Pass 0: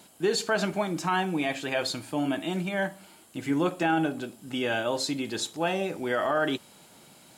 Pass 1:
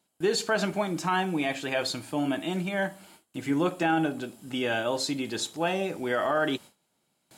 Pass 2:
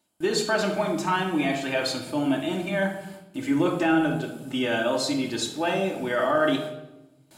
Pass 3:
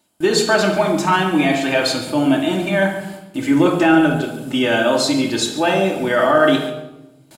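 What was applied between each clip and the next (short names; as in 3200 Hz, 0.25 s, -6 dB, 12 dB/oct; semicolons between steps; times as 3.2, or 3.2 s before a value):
gate with hold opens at -42 dBFS
reverb RT60 0.95 s, pre-delay 3 ms, DRR 1 dB
outdoor echo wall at 24 m, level -13 dB; gain +8.5 dB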